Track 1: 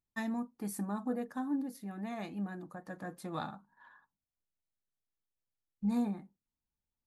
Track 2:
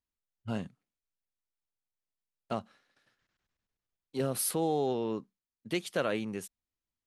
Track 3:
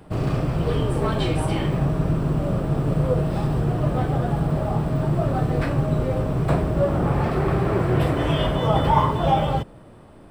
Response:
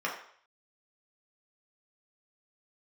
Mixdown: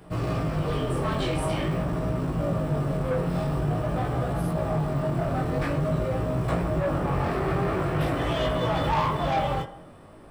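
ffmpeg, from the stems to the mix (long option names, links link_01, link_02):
-filter_complex "[1:a]volume=-12.5dB[link_01];[2:a]highshelf=frequency=4800:gain=4.5,volume=-0.5dB,asplit=2[link_02][link_03];[link_03]volume=-11dB[link_04];[3:a]atrim=start_sample=2205[link_05];[link_04][link_05]afir=irnorm=-1:irlink=0[link_06];[link_01][link_02][link_06]amix=inputs=3:normalize=0,asoftclip=type=tanh:threshold=-17dB,flanger=delay=16:depth=7.1:speed=0.47"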